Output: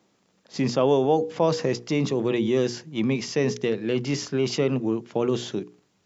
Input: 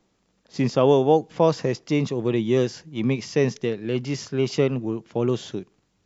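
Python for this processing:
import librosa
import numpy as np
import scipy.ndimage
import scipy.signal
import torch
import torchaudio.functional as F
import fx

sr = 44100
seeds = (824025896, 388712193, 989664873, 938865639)

p1 = scipy.signal.sosfilt(scipy.signal.butter(2, 130.0, 'highpass', fs=sr, output='sos'), x)
p2 = fx.hum_notches(p1, sr, base_hz=60, count=8)
p3 = fx.over_compress(p2, sr, threshold_db=-26.0, ratio=-1.0)
p4 = p2 + (p3 * 10.0 ** (-2.5 / 20.0))
y = p4 * 10.0 ** (-3.5 / 20.0)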